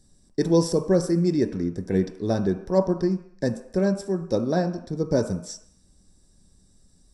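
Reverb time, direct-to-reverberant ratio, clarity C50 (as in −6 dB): 0.70 s, 6.0 dB, 11.0 dB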